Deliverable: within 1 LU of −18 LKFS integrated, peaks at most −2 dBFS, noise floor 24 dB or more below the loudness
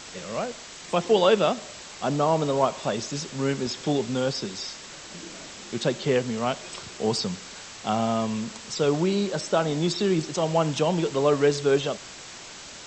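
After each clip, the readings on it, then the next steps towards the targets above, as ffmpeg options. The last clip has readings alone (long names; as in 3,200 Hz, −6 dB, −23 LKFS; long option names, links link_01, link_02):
background noise floor −42 dBFS; target noise floor −50 dBFS; integrated loudness −25.5 LKFS; sample peak −7.0 dBFS; target loudness −18.0 LKFS
→ -af "afftdn=noise_reduction=8:noise_floor=-42"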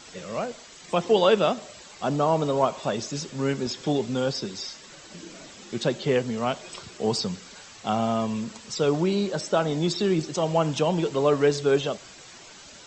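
background noise floor −47 dBFS; target noise floor −50 dBFS
→ -af "afftdn=noise_reduction=6:noise_floor=-47"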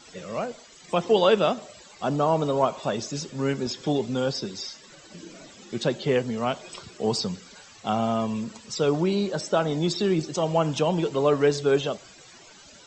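background noise floor −50 dBFS; integrated loudness −25.5 LKFS; sample peak −7.0 dBFS; target loudness −18.0 LKFS
→ -af "volume=7.5dB,alimiter=limit=-2dB:level=0:latency=1"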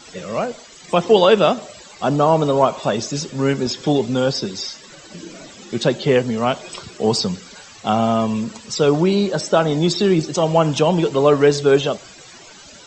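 integrated loudness −18.5 LKFS; sample peak −2.0 dBFS; background noise floor −43 dBFS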